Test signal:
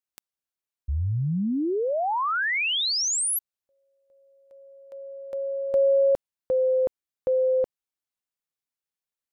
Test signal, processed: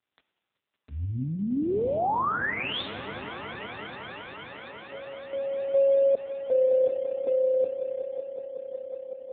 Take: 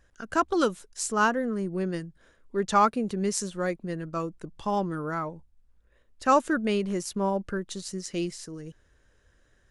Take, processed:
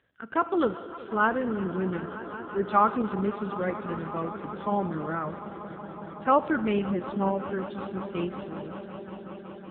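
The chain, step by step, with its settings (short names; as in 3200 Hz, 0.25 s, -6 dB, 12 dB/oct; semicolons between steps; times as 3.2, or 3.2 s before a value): swelling echo 0.186 s, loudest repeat 5, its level -17 dB; Schroeder reverb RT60 2.3 s, combs from 25 ms, DRR 12 dB; AMR-NB 5.9 kbps 8000 Hz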